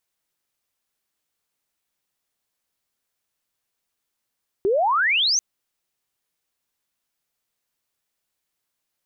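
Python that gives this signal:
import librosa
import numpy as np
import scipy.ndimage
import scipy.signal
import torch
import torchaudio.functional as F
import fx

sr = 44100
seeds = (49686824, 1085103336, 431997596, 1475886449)

y = fx.chirp(sr, length_s=0.74, from_hz=370.0, to_hz=6500.0, law='logarithmic', from_db=-16.5, to_db=-17.0)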